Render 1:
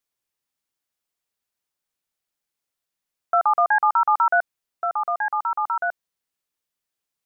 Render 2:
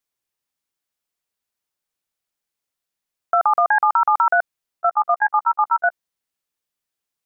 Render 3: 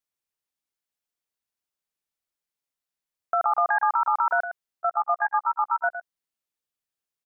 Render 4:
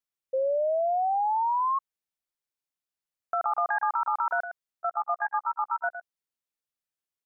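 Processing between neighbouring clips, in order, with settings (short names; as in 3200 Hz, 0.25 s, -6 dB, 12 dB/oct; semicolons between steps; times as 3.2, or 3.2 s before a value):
level quantiser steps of 23 dB; gain +7.5 dB
echo 0.11 s -10 dB; gain -6.5 dB
painted sound rise, 0.33–1.79, 520–1100 Hz -21 dBFS; gain -4.5 dB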